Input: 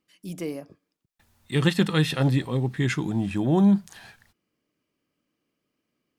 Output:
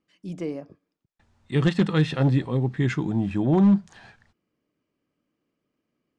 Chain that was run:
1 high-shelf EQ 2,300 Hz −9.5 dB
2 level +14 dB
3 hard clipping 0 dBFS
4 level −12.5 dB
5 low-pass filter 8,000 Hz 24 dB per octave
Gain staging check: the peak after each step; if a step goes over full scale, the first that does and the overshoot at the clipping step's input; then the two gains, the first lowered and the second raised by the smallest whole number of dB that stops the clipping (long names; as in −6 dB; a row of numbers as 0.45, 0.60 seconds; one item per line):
−9.0, +5.0, 0.0, −12.5, −12.0 dBFS
step 2, 5.0 dB
step 2 +9 dB, step 4 −7.5 dB